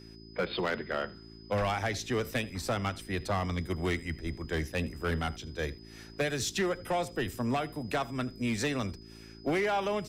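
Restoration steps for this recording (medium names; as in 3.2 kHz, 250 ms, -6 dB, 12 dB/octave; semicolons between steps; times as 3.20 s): clip repair -24 dBFS; de-hum 55.4 Hz, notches 7; band-stop 5 kHz, Q 30; inverse comb 80 ms -21.5 dB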